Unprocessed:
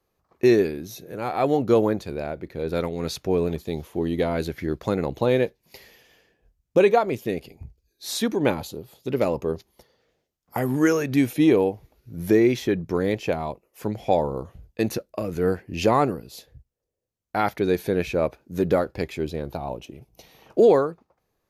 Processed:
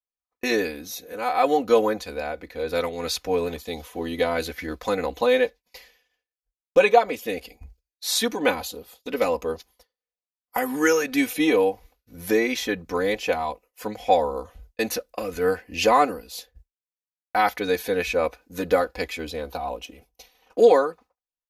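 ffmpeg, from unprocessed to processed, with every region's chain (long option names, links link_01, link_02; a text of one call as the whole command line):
ffmpeg -i in.wav -filter_complex "[0:a]asettb=1/sr,asplit=3[link_01][link_02][link_03];[link_01]atrim=end=5.354[link_04];[link_02]atrim=start=5.35:end=7.17,asetpts=PTS-STARTPTS,afade=type=in:duration=0.004:curve=qsin,afade=type=out:start_time=1.816:duration=0.004:curve=qsin,highshelf=frequency=9300:gain=-6.5,agate=range=-33dB:threshold=-59dB:ratio=3:release=100:detection=peak[link_05];[link_03]atrim=start=7.166[link_06];[link_04][link_05]acrossfade=duration=0.004:curve1=hsin:curve2=qsin[link_07];[link_07][link_06]acrossfade=duration=0.004:curve1=qsin:curve2=hsin,agate=range=-33dB:threshold=-44dB:ratio=3:detection=peak,equalizer=frequency=170:width=0.51:gain=-14.5,aecho=1:1:4:0.97,volume=3dB" out.wav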